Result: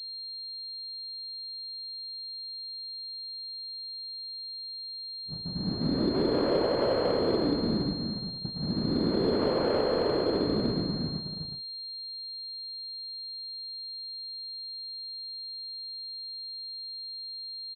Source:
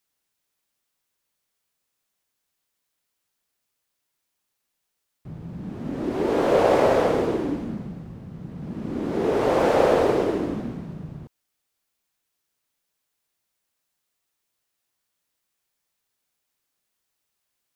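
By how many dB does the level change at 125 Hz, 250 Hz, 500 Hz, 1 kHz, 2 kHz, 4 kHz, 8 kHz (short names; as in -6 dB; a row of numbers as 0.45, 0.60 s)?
-0.5 dB, -1.5 dB, -6.0 dB, -9.5 dB, -9.0 dB, +12.5 dB, n/a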